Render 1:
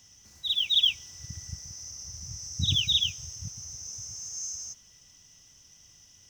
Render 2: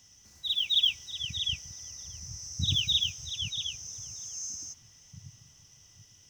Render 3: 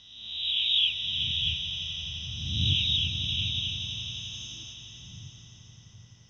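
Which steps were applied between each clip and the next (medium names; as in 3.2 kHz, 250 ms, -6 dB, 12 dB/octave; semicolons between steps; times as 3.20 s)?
repeats whose band climbs or falls 634 ms, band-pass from 2.5 kHz, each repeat -1.4 oct, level -5 dB; trim -2 dB
reverse spectral sustain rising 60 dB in 1.05 s; distance through air 200 m; echo with a slow build-up 86 ms, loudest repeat 5, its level -13.5 dB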